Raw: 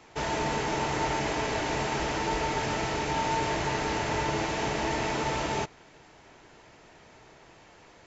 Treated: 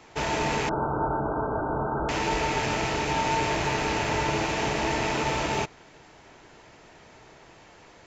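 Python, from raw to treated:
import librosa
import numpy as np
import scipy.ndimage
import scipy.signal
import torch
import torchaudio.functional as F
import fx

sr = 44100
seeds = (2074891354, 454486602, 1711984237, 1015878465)

y = fx.rattle_buzz(x, sr, strikes_db=-43.0, level_db=-27.0)
y = fx.brickwall_lowpass(y, sr, high_hz=1600.0, at=(0.69, 2.09))
y = y * librosa.db_to_amplitude(2.5)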